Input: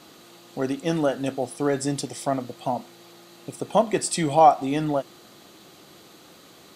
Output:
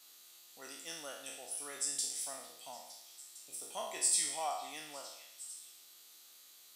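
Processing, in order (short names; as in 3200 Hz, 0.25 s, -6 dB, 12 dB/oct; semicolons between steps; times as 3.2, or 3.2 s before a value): spectral trails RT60 0.80 s; differentiator; delay with a stepping band-pass 0.456 s, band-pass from 2800 Hz, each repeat 0.7 oct, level -11 dB; gain -5.5 dB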